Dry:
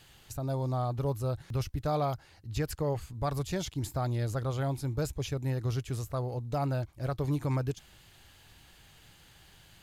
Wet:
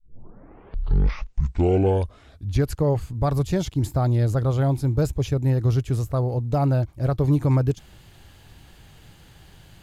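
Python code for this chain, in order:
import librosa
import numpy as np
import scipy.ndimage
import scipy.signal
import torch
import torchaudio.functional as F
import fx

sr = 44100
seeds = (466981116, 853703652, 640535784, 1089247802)

y = fx.tape_start_head(x, sr, length_s=2.81)
y = fx.tilt_shelf(y, sr, db=4.5, hz=810.0)
y = y * 10.0 ** (7.0 / 20.0)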